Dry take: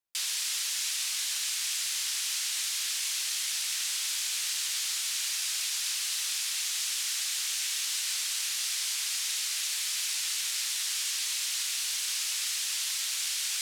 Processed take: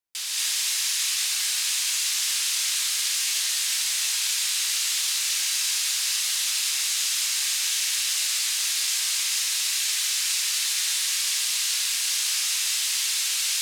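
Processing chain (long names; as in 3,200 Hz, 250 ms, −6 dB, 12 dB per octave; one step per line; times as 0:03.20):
reverb whose tail is shaped and stops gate 270 ms rising, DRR −5 dB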